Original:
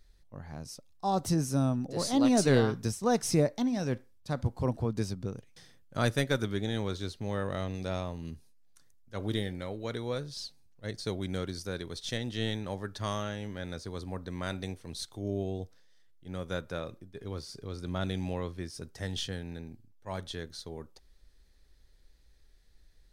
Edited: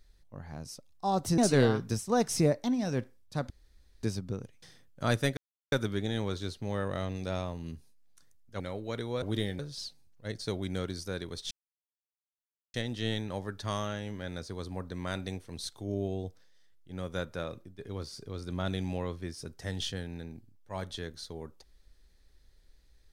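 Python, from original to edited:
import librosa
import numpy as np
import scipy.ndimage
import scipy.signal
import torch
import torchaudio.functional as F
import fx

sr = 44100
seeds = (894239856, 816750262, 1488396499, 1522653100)

y = fx.edit(x, sr, fx.cut(start_s=1.38, length_s=0.94),
    fx.room_tone_fill(start_s=4.44, length_s=0.53),
    fx.insert_silence(at_s=6.31, length_s=0.35),
    fx.move(start_s=9.19, length_s=0.37, to_s=10.18),
    fx.insert_silence(at_s=12.1, length_s=1.23), tone=tone)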